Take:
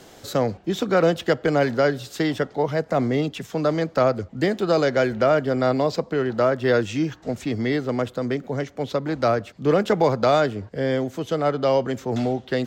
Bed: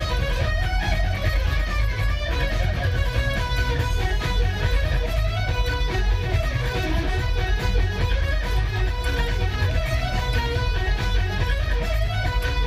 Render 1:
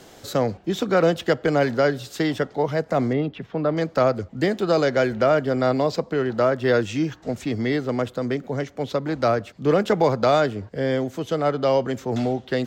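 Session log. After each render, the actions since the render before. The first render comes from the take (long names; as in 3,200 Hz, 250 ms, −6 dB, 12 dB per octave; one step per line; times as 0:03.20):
0:03.13–0:03.77: high-frequency loss of the air 350 metres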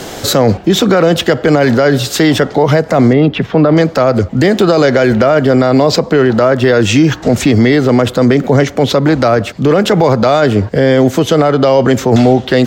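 in parallel at −2 dB: speech leveller 0.5 s
on the sum: boost into a limiter +14.5 dB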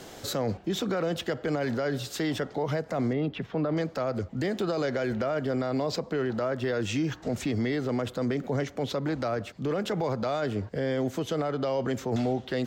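level −19.5 dB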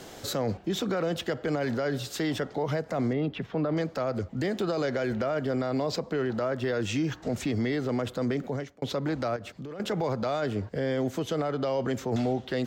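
0:08.41–0:08.82: fade out linear
0:09.36–0:09.80: downward compressor 12 to 1, threshold −35 dBFS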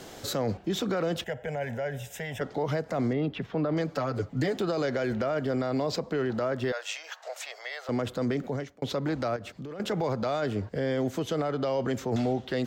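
0:01.24–0:02.41: phaser with its sweep stopped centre 1,200 Hz, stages 6
0:03.87–0:04.57: comb filter 6.9 ms
0:06.72–0:07.89: Butterworth high-pass 570 Hz 48 dB per octave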